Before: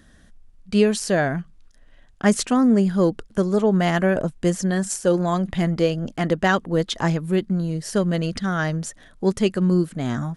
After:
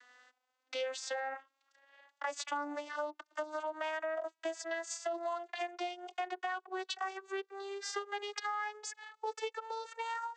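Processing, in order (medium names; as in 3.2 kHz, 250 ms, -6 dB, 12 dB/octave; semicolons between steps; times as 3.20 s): vocoder on a note that slides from B3, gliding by +11 st; high-pass 720 Hz 24 dB/octave; peak limiter -25 dBFS, peak gain reduction 9.5 dB; compression 4:1, threshold -44 dBFS, peak gain reduction 13 dB; trim +7.5 dB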